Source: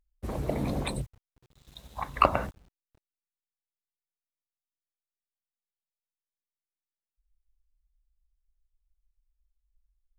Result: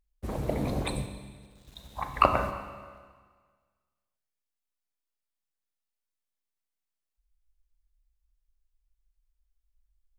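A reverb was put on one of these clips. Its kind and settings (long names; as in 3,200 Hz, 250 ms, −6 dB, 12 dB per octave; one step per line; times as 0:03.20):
four-comb reverb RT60 1.6 s, combs from 30 ms, DRR 7.5 dB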